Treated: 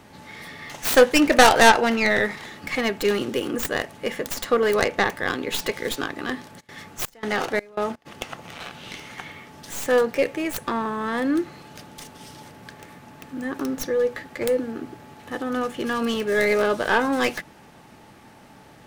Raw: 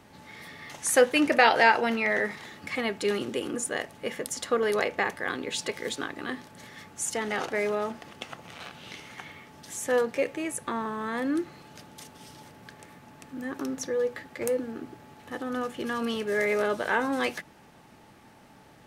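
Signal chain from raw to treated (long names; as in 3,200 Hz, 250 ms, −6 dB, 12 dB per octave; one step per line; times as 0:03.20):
stylus tracing distortion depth 0.43 ms
0:06.59–0:08.05: gate pattern "xx.x.xx." 83 BPM −24 dB
level +5.5 dB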